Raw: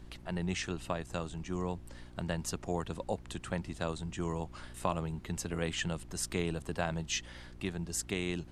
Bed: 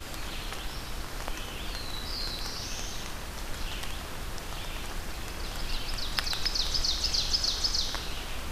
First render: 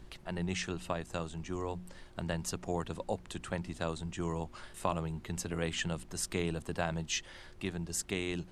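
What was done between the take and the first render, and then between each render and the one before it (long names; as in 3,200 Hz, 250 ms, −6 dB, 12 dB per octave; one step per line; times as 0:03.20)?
hum removal 60 Hz, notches 5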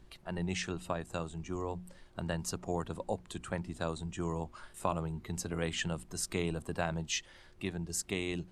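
noise reduction from a noise print 6 dB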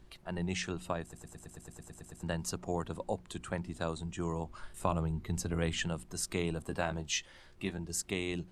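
0:01.02: stutter in place 0.11 s, 11 plays
0:04.49–0:05.85: low-shelf EQ 130 Hz +8.5 dB
0:06.62–0:07.85: double-tracking delay 15 ms −9 dB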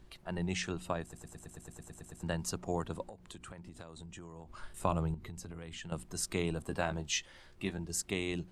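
0:01.39–0:02.16: notch filter 4,900 Hz
0:03.02–0:04.59: downward compressor 12 to 1, threshold −44 dBFS
0:05.14–0:05.92: downward compressor 12 to 1, threshold −41 dBFS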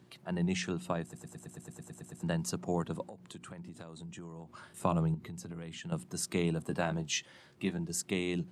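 high-pass filter 130 Hz 24 dB per octave
low-shelf EQ 200 Hz +9.5 dB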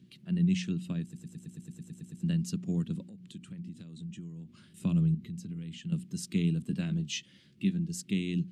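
drawn EQ curve 120 Hz 0 dB, 200 Hz +8 dB, 830 Hz −24 dB, 2,900 Hz 0 dB, 8,700 Hz −6 dB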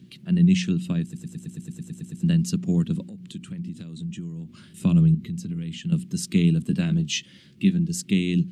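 level +9 dB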